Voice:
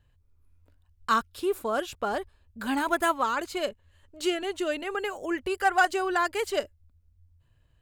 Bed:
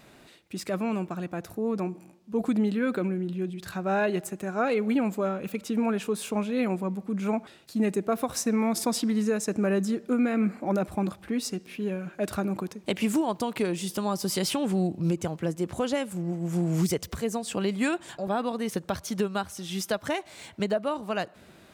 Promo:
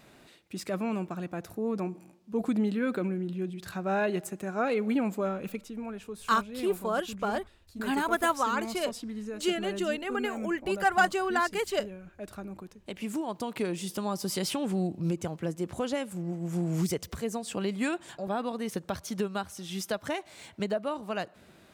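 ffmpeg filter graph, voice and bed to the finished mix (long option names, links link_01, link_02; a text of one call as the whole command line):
ffmpeg -i stem1.wav -i stem2.wav -filter_complex "[0:a]adelay=5200,volume=-1.5dB[link_01];[1:a]volume=6dB,afade=type=out:start_time=5.49:duration=0.21:silence=0.334965,afade=type=in:start_time=12.87:duration=0.78:silence=0.375837[link_02];[link_01][link_02]amix=inputs=2:normalize=0" out.wav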